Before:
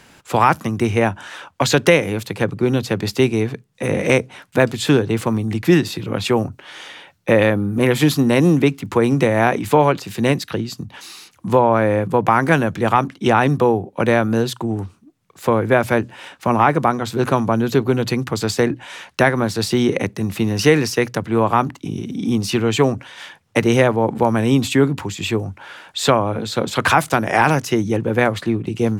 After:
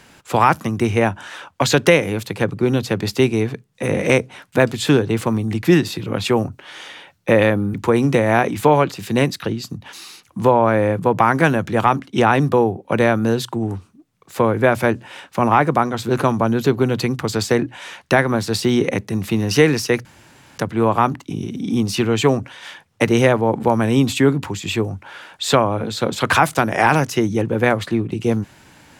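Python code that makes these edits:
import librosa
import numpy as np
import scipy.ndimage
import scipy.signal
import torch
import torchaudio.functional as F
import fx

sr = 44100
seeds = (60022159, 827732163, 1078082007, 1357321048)

y = fx.edit(x, sr, fx.cut(start_s=7.74, length_s=1.08),
    fx.insert_room_tone(at_s=21.13, length_s=0.53), tone=tone)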